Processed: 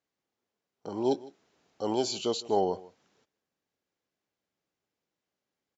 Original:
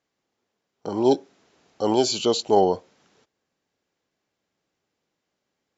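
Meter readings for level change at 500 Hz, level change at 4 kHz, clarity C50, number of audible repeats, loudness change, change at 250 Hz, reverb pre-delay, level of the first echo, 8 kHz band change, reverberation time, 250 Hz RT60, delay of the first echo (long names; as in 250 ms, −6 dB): −8.5 dB, −8.5 dB, no reverb audible, 1, −8.5 dB, −8.5 dB, no reverb audible, −20.5 dB, can't be measured, no reverb audible, no reverb audible, 156 ms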